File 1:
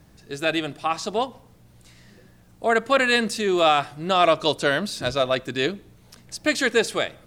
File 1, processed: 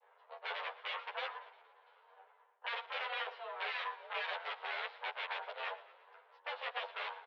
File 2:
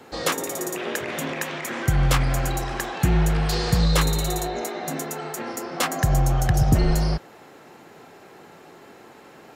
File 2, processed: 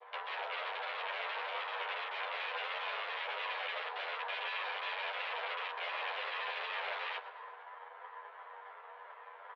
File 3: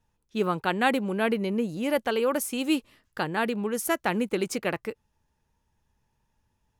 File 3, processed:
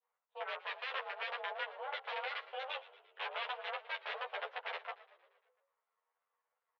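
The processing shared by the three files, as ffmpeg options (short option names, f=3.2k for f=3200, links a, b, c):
-filter_complex "[0:a]asplit=3[a][b][c];[a]bandpass=f=730:t=q:w=8,volume=0dB[d];[b]bandpass=f=1.09k:t=q:w=8,volume=-6dB[e];[c]bandpass=f=2.44k:t=q:w=8,volume=-9dB[f];[d][e][f]amix=inputs=3:normalize=0,equalizer=f=2.3k:t=o:w=0.62:g=-15,areverse,acompressor=threshold=-40dB:ratio=10,areverse,aeval=exprs='max(val(0),0)':c=same,adynamicequalizer=threshold=0.00112:dfrequency=1100:dqfactor=0.92:tfrequency=1100:tqfactor=0.92:attack=5:release=100:ratio=0.375:range=1.5:mode=boostabove:tftype=bell,aeval=exprs='(mod(100*val(0)+1,2)-1)/100':c=same,tremolo=f=220:d=0.788,asplit=2[g][h];[h]adelay=12,volume=-7dB[i];[g][i]amix=inputs=2:normalize=0,asplit=7[j][k][l][m][n][o][p];[k]adelay=115,afreqshift=-49,volume=-18dB[q];[l]adelay=230,afreqshift=-98,volume=-22.3dB[r];[m]adelay=345,afreqshift=-147,volume=-26.6dB[s];[n]adelay=460,afreqshift=-196,volume=-30.9dB[t];[o]adelay=575,afreqshift=-245,volume=-35.2dB[u];[p]adelay=690,afreqshift=-294,volume=-39.5dB[v];[j][q][r][s][t][u][v]amix=inputs=7:normalize=0,highpass=f=190:t=q:w=0.5412,highpass=f=190:t=q:w=1.307,lowpass=f=3.2k:t=q:w=0.5176,lowpass=f=3.2k:t=q:w=0.7071,lowpass=f=3.2k:t=q:w=1.932,afreqshift=260,asplit=2[w][x];[x]adelay=10.3,afreqshift=2.8[y];[w][y]amix=inputs=2:normalize=1,volume=16.5dB"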